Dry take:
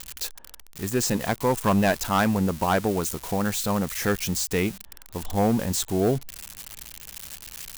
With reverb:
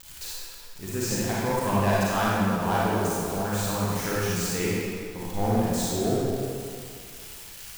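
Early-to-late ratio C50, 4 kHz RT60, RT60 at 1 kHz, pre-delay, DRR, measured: −5.5 dB, 1.6 s, 2.3 s, 35 ms, −7.5 dB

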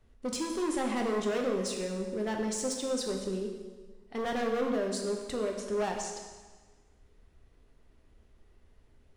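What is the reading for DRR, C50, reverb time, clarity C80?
1.5 dB, 4.5 dB, 1.4 s, 6.0 dB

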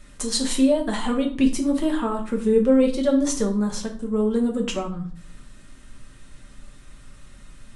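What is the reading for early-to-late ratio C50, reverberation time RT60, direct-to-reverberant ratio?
10.0 dB, 0.45 s, 1.5 dB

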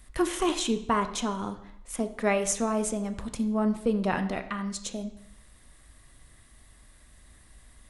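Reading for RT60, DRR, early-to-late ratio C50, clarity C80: 0.70 s, 8.0 dB, 12.0 dB, 14.5 dB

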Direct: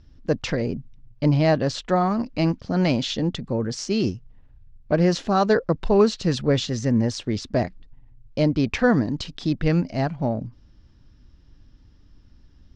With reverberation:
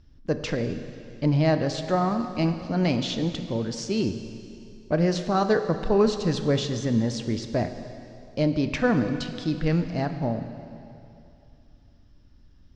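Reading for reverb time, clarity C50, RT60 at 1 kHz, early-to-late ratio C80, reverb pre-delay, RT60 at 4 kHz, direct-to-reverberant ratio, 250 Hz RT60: 2.7 s, 9.0 dB, 2.7 s, 9.5 dB, 6 ms, 2.5 s, 7.5 dB, 2.7 s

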